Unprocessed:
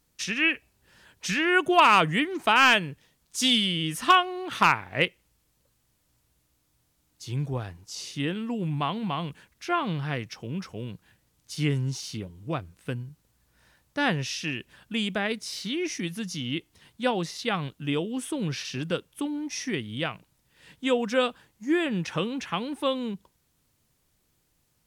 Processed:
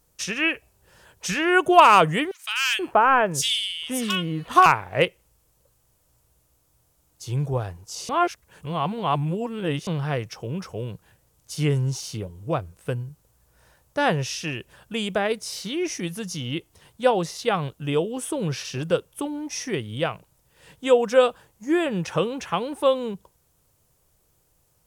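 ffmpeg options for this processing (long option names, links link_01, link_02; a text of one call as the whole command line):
ffmpeg -i in.wav -filter_complex "[0:a]asettb=1/sr,asplit=3[link_01][link_02][link_03];[link_01]atrim=end=2.314[link_04];[link_02]atrim=start=2.31:end=4.66,asetpts=PTS-STARTPTS,afade=type=in:duration=0.004:curve=qsin,afade=type=out:start_time=2.346:duration=0.004:curve=qsin,acrossover=split=1900[link_05][link_06];[link_05]adelay=480[link_07];[link_07][link_06]amix=inputs=2:normalize=0,atrim=end_sample=103635[link_08];[link_03]atrim=start=4.656[link_09];[link_04][link_08]acrossfade=duration=0.004:curve1=hsin:curve2=qsin[link_10];[link_10][link_09]acrossfade=duration=0.004:curve1=qsin:curve2=hsin,asplit=3[link_11][link_12][link_13];[link_11]atrim=end=8.092[link_14];[link_12]atrim=start=8.088:end=9.872,asetpts=PTS-STARTPTS,areverse[link_15];[link_13]atrim=start=9.868[link_16];[link_14][link_15]acrossfade=duration=0.004:curve1=hsin:curve2=hsin[link_17];[link_17][link_16]acrossfade=duration=0.004:curve1=hsin:curve2=hsin,equalizer=frequency=250:width_type=o:width=1:gain=-9,equalizer=frequency=500:width_type=o:width=1:gain=4,equalizer=frequency=2000:width_type=o:width=1:gain=-6,equalizer=frequency=4000:width_type=o:width=1:gain=-6,volume=6.5dB" out.wav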